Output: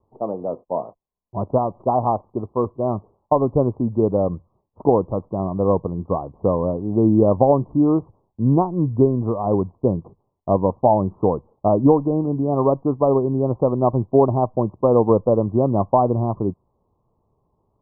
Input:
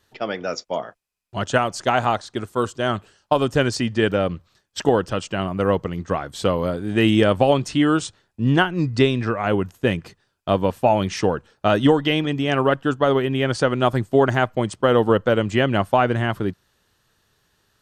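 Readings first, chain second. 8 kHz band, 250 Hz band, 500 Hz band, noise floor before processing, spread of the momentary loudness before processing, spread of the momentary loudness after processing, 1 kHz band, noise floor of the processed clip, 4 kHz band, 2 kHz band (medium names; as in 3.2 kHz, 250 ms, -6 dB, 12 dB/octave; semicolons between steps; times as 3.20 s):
under -40 dB, +1.5 dB, +1.5 dB, -70 dBFS, 10 LU, 10 LU, 0.0 dB, -71 dBFS, under -40 dB, under -40 dB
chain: steep low-pass 1.1 kHz 96 dB/octave; trim +1.5 dB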